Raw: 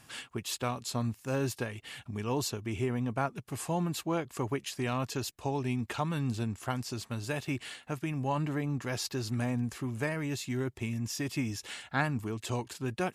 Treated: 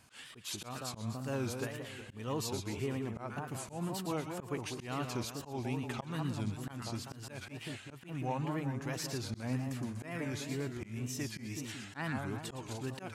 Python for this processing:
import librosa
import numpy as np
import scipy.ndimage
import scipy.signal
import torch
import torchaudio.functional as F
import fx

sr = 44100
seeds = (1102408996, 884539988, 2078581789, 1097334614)

y = fx.echo_split(x, sr, split_hz=1200.0, low_ms=189, high_ms=120, feedback_pct=52, wet_db=-6)
y = fx.auto_swell(y, sr, attack_ms=136.0)
y = fx.wow_flutter(y, sr, seeds[0], rate_hz=2.1, depth_cents=150.0)
y = y * 10.0 ** (-5.0 / 20.0)